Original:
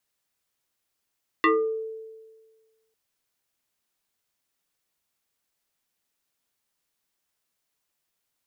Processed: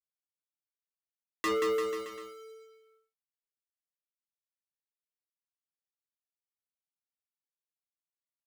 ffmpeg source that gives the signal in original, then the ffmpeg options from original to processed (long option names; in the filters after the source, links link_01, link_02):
-f lavfi -i "aevalsrc='0.178*pow(10,-3*t/1.52)*sin(2*PI*443*t+3.1*pow(10,-3*t/0.44)*sin(2*PI*1.73*443*t))':duration=1.5:sample_rate=44100"
-filter_complex "[0:a]volume=28dB,asoftclip=hard,volume=-28dB,acrusher=bits=7:mix=0:aa=0.5,asplit=2[link_01][link_02];[link_02]aecho=0:1:180|342|487.8|619|737.1:0.631|0.398|0.251|0.158|0.1[link_03];[link_01][link_03]amix=inputs=2:normalize=0"